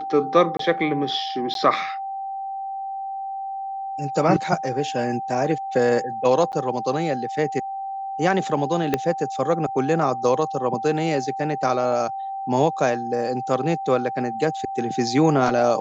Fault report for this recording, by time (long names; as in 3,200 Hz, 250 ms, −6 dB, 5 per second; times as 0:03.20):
whistle 780 Hz −27 dBFS
0:00.57–0:00.59: drop-out 23 ms
0:01.54–0:01.55: drop-out 12 ms
0:06.52–0:06.53: drop-out 9.2 ms
0:08.94: click −7 dBFS